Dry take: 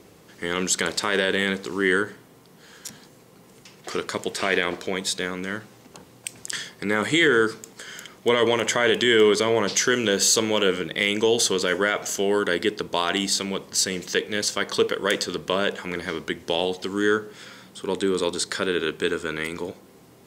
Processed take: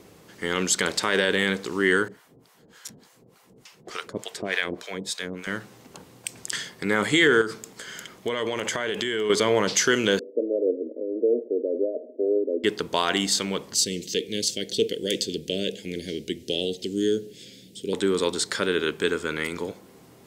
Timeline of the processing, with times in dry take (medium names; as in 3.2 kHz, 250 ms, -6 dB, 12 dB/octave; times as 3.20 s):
2.08–5.47 s: harmonic tremolo 3.4 Hz, depth 100%, crossover 650 Hz
7.41–9.30 s: compression, threshold -23 dBFS
10.19–12.64 s: Chebyshev band-pass 240–630 Hz, order 5
13.74–17.93 s: Chebyshev band-stop 400–3100 Hz